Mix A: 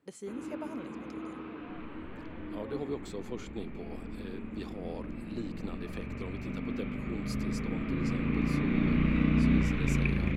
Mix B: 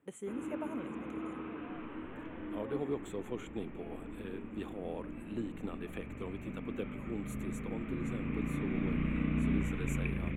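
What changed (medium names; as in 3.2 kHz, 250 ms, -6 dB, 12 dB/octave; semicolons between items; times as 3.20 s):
second sound -6.5 dB; master: add Butterworth band-stop 4.9 kHz, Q 1.3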